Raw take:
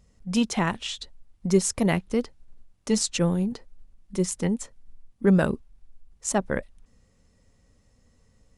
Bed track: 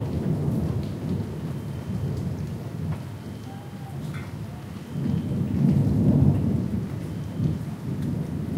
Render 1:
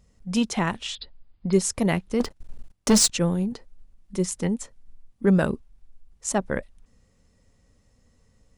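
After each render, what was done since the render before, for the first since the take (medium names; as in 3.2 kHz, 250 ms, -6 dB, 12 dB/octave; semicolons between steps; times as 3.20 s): 0.95–1.53 s: brick-wall FIR low-pass 5.1 kHz; 2.20–3.10 s: waveshaping leveller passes 3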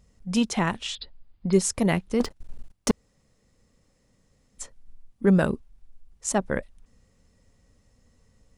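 2.91–4.58 s: room tone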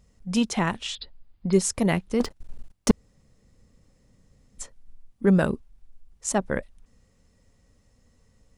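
2.89–4.62 s: bass shelf 280 Hz +7.5 dB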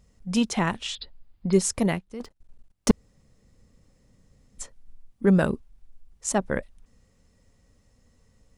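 1.84–2.88 s: dip -13 dB, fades 0.21 s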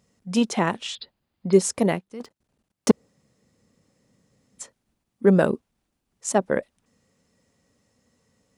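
high-pass 150 Hz 12 dB/octave; dynamic bell 490 Hz, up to +6 dB, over -34 dBFS, Q 0.72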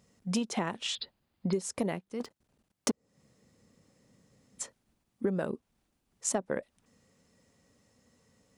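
compression 20:1, threshold -27 dBFS, peak gain reduction 19 dB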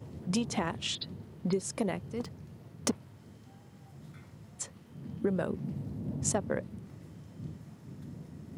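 add bed track -17.5 dB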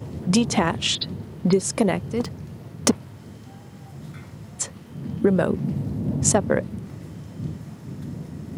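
trim +11.5 dB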